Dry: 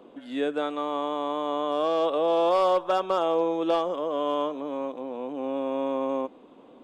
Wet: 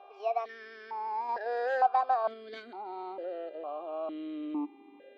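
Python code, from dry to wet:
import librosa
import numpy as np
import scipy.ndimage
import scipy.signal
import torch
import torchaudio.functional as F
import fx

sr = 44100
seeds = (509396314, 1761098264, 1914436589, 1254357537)

p1 = fx.speed_glide(x, sr, from_pct=159, to_pct=105)
p2 = fx.level_steps(p1, sr, step_db=12)
p3 = p1 + (p2 * librosa.db_to_amplitude(-1.0))
p4 = fx.dmg_buzz(p3, sr, base_hz=400.0, harmonics=10, level_db=-46.0, tilt_db=-5, odd_only=False)
y = fx.vowel_held(p4, sr, hz=2.2)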